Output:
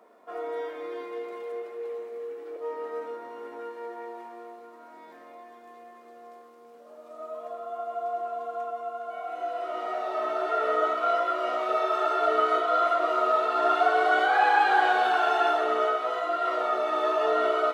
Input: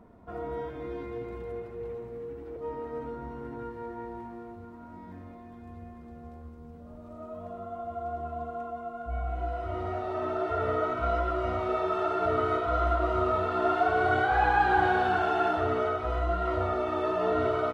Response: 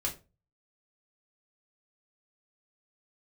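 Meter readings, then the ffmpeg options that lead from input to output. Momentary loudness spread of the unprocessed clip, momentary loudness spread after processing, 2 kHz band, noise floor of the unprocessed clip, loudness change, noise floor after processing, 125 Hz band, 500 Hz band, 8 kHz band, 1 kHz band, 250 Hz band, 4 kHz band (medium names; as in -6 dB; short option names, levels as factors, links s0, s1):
21 LU, 17 LU, +3.5 dB, -47 dBFS, +3.0 dB, -50 dBFS, under -35 dB, +2.0 dB, no reading, +3.5 dB, -5.5 dB, +7.5 dB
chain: -filter_complex "[0:a]highpass=f=370:w=0.5412,highpass=f=370:w=1.3066,asplit=2[s0][s1];[s1]tiltshelf=f=1400:g=-7[s2];[1:a]atrim=start_sample=2205[s3];[s2][s3]afir=irnorm=-1:irlink=0,volume=0.631[s4];[s0][s4]amix=inputs=2:normalize=0"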